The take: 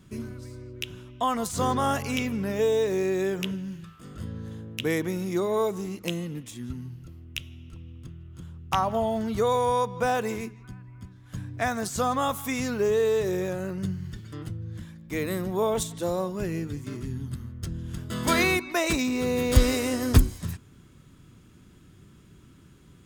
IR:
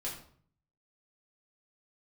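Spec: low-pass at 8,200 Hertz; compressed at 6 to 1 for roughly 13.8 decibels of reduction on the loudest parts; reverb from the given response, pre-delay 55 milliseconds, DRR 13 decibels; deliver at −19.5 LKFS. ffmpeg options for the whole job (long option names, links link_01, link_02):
-filter_complex "[0:a]lowpass=8200,acompressor=threshold=-26dB:ratio=6,asplit=2[link_01][link_02];[1:a]atrim=start_sample=2205,adelay=55[link_03];[link_02][link_03]afir=irnorm=-1:irlink=0,volume=-14dB[link_04];[link_01][link_04]amix=inputs=2:normalize=0,volume=12.5dB"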